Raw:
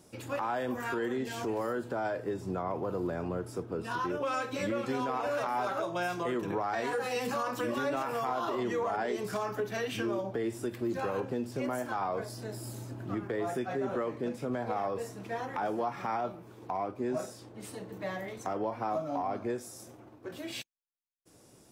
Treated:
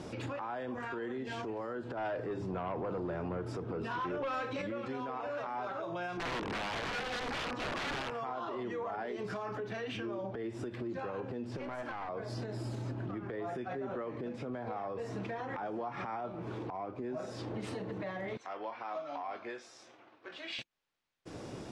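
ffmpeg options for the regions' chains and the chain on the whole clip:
ffmpeg -i in.wav -filter_complex "[0:a]asettb=1/sr,asplit=3[link_01][link_02][link_03];[link_01]atrim=end=1.974[link_04];[link_02]atrim=start=1.97:end=4.62,asetpts=PTS-STARTPTS,afade=type=in:duration=0.004:curve=qsin,afade=type=out:start_time=2.646:duration=0.004:curve=qsin,bandreject=frequency=50:width_type=h:width=6,bandreject=frequency=100:width_type=h:width=6,bandreject=frequency=150:width_type=h:width=6,bandreject=frequency=200:width_type=h:width=6,bandreject=frequency=250:width_type=h:width=6,bandreject=frequency=300:width_type=h:width=6,bandreject=frequency=350:width_type=h:width=6,bandreject=frequency=400:width_type=h:width=6,aeval=exprs='0.075*sin(PI/2*1.58*val(0)/0.075)':channel_layout=same[link_05];[link_03]atrim=start=4.616[link_06];[link_04][link_05]acrossfade=duration=0.004:curve1=hsin:curve2=qsin[link_07];[link_07][link_06]acrossfade=duration=0.004:curve1=qsin:curve2=hsin,asettb=1/sr,asplit=3[link_08][link_09][link_10];[link_08]atrim=end=6.174[link_11];[link_09]atrim=start=6.17:end=8.1,asetpts=PTS-STARTPTS,afade=type=in:duration=0.004:curve=qsin,afade=type=out:start_time=1.926:duration=0.004:curve=qsin,highpass=110,aemphasis=mode=reproduction:type=50kf,aeval=exprs='(mod(28.2*val(0)+1,2)-1)/28.2':channel_layout=same[link_12];[link_10]atrim=start=8.096[link_13];[link_11][link_12]acrossfade=duration=0.004:curve1=hsin:curve2=qsin[link_14];[link_14][link_13]acrossfade=duration=0.004:curve1=qsin:curve2=hsin,asettb=1/sr,asplit=3[link_15][link_16][link_17];[link_15]atrim=end=11.574[link_18];[link_16]atrim=start=11.57:end=12.09,asetpts=PTS-STARTPTS,afade=type=in:duration=0.004:curve=qsin,afade=type=out:start_time=0.516:duration=0.004:curve=qsin,lowshelf=frequency=200:gain=-11.5,bandreject=frequency=6900:width=19,aeval=exprs='clip(val(0),-1,0.0119)':channel_layout=same[link_19];[link_17]atrim=start=12.086[link_20];[link_18][link_19]acrossfade=duration=0.004:curve1=hsin:curve2=qsin[link_21];[link_21][link_20]acrossfade=duration=0.004:curve1=qsin:curve2=hsin,asettb=1/sr,asplit=3[link_22][link_23][link_24];[link_22]atrim=end=18.374[link_25];[link_23]atrim=start=18.37:end=20.59,asetpts=PTS-STARTPTS,afade=type=in:duration=0.004:curve=qsin,afade=type=out:start_time=2.216:duration=0.004:curve=qsin,lowpass=3300,aderivative,asplit=2[link_26][link_27];[link_27]adelay=22,volume=-12dB[link_28];[link_26][link_28]amix=inputs=2:normalize=0,atrim=end_sample=97902[link_29];[link_24]atrim=start=20.586[link_30];[link_25][link_29]acrossfade=duration=0.004:curve1=hsin:curve2=qsin[link_31];[link_31][link_30]acrossfade=duration=0.004:curve1=qsin:curve2=hsin,lowpass=3700,acompressor=threshold=-46dB:ratio=8,alimiter=level_in=22.5dB:limit=-24dB:level=0:latency=1:release=146,volume=-22.5dB,volume=15.5dB" out.wav

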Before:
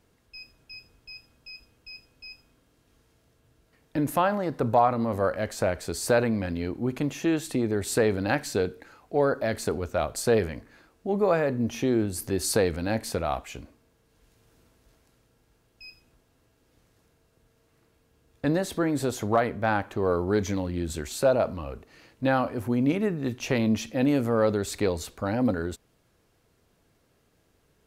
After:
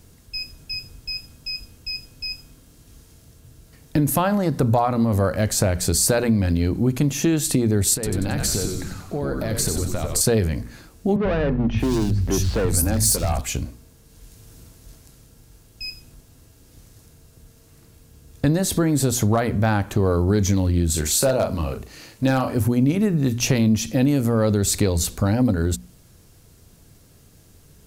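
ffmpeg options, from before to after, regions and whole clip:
ffmpeg -i in.wav -filter_complex "[0:a]asettb=1/sr,asplit=3[link_01][link_02][link_03];[link_01]atrim=end=7.944[link_04];[link_02]atrim=start=7.94:end=10.21,asetpts=PTS-STARTPTS,afade=type=in:duration=0.004:curve=qsin,afade=type=out:start_time=2.266:duration=0.004:curve=qsin,acompressor=threshold=-35dB:ratio=4:attack=3.2:release=140:knee=1:detection=peak,asplit=8[link_05][link_06][link_07][link_08][link_09][link_10][link_11][link_12];[link_06]adelay=92,afreqshift=-91,volume=-5dB[link_13];[link_07]adelay=184,afreqshift=-182,volume=-10.7dB[link_14];[link_08]adelay=276,afreqshift=-273,volume=-16.4dB[link_15];[link_09]adelay=368,afreqshift=-364,volume=-22dB[link_16];[link_10]adelay=460,afreqshift=-455,volume=-27.7dB[link_17];[link_11]adelay=552,afreqshift=-546,volume=-33.4dB[link_18];[link_12]adelay=644,afreqshift=-637,volume=-39.1dB[link_19];[link_05][link_13][link_14][link_15][link_16][link_17][link_18][link_19]amix=inputs=8:normalize=0,atrim=end_sample=100107[link_20];[link_03]atrim=start=10.206[link_21];[link_04][link_20]acrossfade=duration=0.004:curve1=hsin:curve2=qsin[link_22];[link_22][link_21]acrossfade=duration=0.004:curve1=qsin:curve2=hsin,asettb=1/sr,asplit=3[link_23][link_24][link_25];[link_23]atrim=end=11.164[link_26];[link_24]atrim=start=11.16:end=13.41,asetpts=PTS-STARTPTS,afade=type=in:duration=0.004:curve=qsin,afade=type=out:start_time=2.246:duration=0.004:curve=qsin,volume=26dB,asoftclip=hard,volume=-26dB,aeval=exprs='val(0)+0.00708*(sin(2*PI*50*n/s)+sin(2*PI*2*50*n/s)/2+sin(2*PI*3*50*n/s)/3+sin(2*PI*4*50*n/s)/4+sin(2*PI*5*50*n/s)/5)':channel_layout=same,acrossover=split=160|3100[link_27][link_28][link_29];[link_27]adelay=90[link_30];[link_29]adelay=610[link_31];[link_30][link_28][link_31]amix=inputs=3:normalize=0,atrim=end_sample=99225[link_32];[link_25]atrim=start=13.406[link_33];[link_26][link_32]acrossfade=duration=0.004:curve1=hsin:curve2=qsin[link_34];[link_34][link_33]acrossfade=duration=0.004:curve1=qsin:curve2=hsin,asettb=1/sr,asplit=3[link_35][link_36][link_37];[link_35]atrim=end=20.904[link_38];[link_36]atrim=start=20.9:end=22.56,asetpts=PTS-STARTPTS,afade=type=in:duration=0.004:curve=qsin,afade=type=out:start_time=1.656:duration=0.004:curve=qsin,lowshelf=frequency=210:gain=-8,asplit=2[link_39][link_40];[link_40]adelay=38,volume=-7dB[link_41];[link_39][link_41]amix=inputs=2:normalize=0,atrim=end_sample=73206,asoftclip=type=hard:threshold=-14.5dB[link_42];[link_37]atrim=start=22.556[link_43];[link_38][link_42]acrossfade=duration=0.004:curve1=hsin:curve2=qsin[link_44];[link_44][link_43]acrossfade=duration=0.004:curve1=qsin:curve2=hsin,bass=frequency=250:gain=12,treble=frequency=4000:gain=12,bandreject=frequency=60:width_type=h:width=6,bandreject=frequency=120:width_type=h:width=6,bandreject=frequency=180:width_type=h:width=6,bandreject=frequency=240:width_type=h:width=6,acompressor=threshold=-25dB:ratio=3,volume=7.5dB" out.wav

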